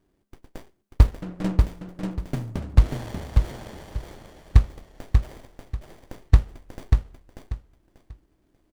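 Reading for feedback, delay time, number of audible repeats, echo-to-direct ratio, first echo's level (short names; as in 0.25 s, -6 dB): 24%, 0.589 s, 3, -3.5 dB, -4.0 dB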